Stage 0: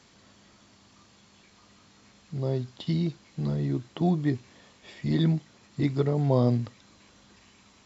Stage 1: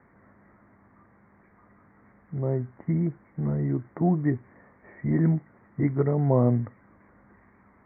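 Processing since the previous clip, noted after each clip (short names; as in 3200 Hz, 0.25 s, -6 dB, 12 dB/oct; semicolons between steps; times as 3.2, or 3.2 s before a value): steep low-pass 2100 Hz 96 dB/oct; gain +1.5 dB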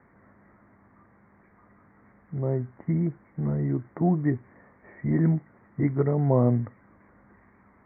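nothing audible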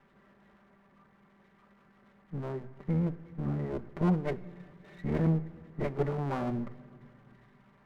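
minimum comb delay 5.1 ms; shoebox room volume 3700 m³, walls mixed, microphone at 0.37 m; gain -3.5 dB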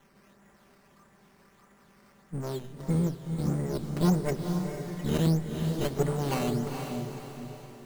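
decimation with a swept rate 9×, swing 100% 1.6 Hz; diffused feedback echo 0.463 s, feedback 46%, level -5.5 dB; gain +2.5 dB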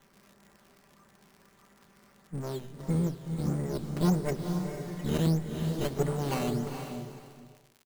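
ending faded out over 1.25 s; crackle 94/s -43 dBFS; gain -1.5 dB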